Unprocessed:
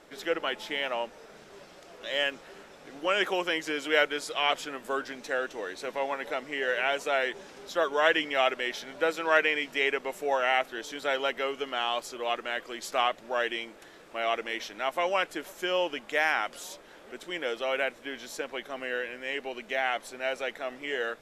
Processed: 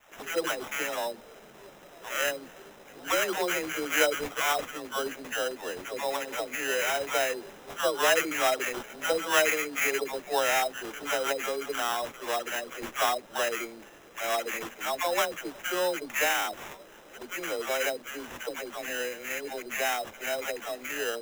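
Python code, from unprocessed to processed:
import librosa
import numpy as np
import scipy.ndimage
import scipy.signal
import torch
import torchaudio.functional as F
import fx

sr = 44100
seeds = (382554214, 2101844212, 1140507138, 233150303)

y = fx.dispersion(x, sr, late='lows', ms=126.0, hz=590.0)
y = fx.sample_hold(y, sr, seeds[0], rate_hz=4500.0, jitter_pct=0)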